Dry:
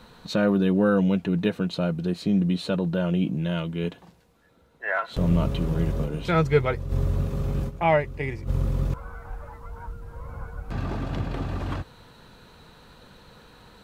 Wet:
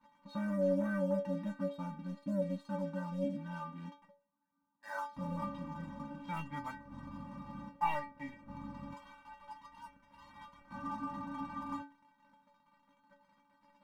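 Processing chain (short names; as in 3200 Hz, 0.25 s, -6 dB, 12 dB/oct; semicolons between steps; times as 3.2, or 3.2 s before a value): double band-pass 440 Hz, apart 2.3 oct; sample leveller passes 2; metallic resonator 280 Hz, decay 0.34 s, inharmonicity 0.008; gain +11 dB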